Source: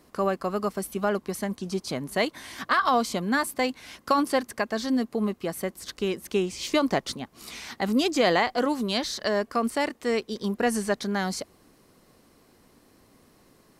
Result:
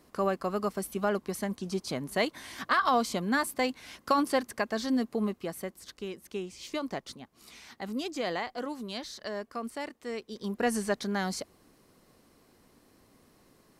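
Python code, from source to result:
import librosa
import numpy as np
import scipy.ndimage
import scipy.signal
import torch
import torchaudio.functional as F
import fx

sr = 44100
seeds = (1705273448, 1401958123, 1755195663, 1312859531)

y = fx.gain(x, sr, db=fx.line((5.19, -3.0), (6.09, -11.0), (10.18, -11.0), (10.65, -3.5)))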